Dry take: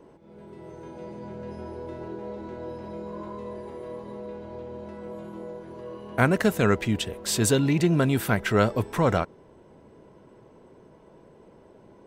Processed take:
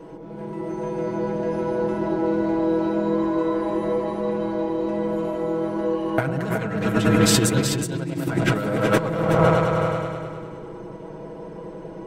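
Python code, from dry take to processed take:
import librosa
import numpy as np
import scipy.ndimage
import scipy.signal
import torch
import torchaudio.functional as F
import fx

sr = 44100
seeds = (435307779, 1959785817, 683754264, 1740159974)

p1 = x + 0.81 * np.pad(x, (int(6.2 * sr / 1000.0), 0))[:len(x)]
p2 = fx.echo_opening(p1, sr, ms=101, hz=750, octaves=1, feedback_pct=70, wet_db=0)
p3 = np.clip(10.0 ** (15.5 / 20.0) * p2, -1.0, 1.0) / 10.0 ** (15.5 / 20.0)
p4 = p2 + (p3 * librosa.db_to_amplitude(-5.5))
p5 = fx.over_compress(p4, sr, threshold_db=-19.0, ratio=-0.5)
p6 = fx.high_shelf(p5, sr, hz=7500.0, db=-4.0)
y = p6 + fx.echo_single(p6, sr, ms=371, db=-7.0, dry=0)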